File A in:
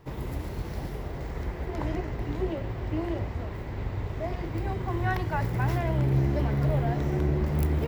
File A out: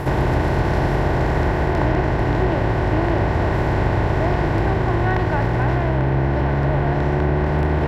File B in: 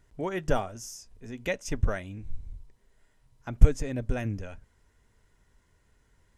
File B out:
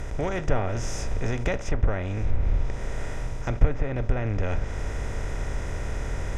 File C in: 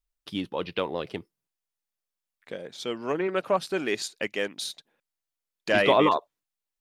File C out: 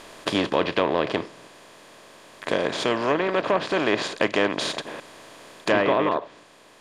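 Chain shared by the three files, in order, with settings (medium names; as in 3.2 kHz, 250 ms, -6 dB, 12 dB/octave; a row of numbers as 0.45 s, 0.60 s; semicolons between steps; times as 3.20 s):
spectral levelling over time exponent 0.4; low-pass that closes with the level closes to 2.4 kHz, closed at -14.5 dBFS; gain riding within 4 dB 0.5 s; peak normalisation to -6 dBFS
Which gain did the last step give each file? +4.0 dB, -1.5 dB, -1.0 dB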